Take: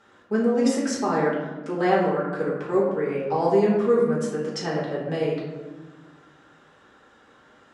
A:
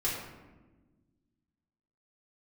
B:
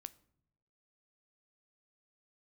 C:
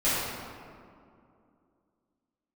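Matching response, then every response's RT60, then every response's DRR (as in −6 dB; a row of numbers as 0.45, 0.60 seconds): A; 1.3 s, non-exponential decay, 2.4 s; −6.5, 14.5, −13.0 decibels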